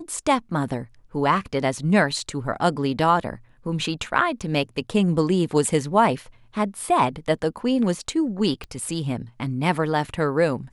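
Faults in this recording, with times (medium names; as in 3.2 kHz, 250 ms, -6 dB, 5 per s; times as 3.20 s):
8.64 s: pop -22 dBFS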